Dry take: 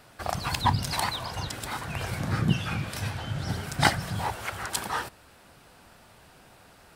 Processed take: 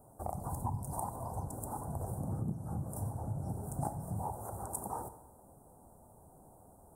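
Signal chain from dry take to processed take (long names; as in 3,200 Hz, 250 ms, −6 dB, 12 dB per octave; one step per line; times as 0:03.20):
Chebyshev band-stop filter 860–8,800 Hz, order 3
downward compressor 4 to 1, threshold −32 dBFS, peak gain reduction 12.5 dB
dense smooth reverb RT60 1.2 s, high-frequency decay 0.95×, DRR 11.5 dB
level −2.5 dB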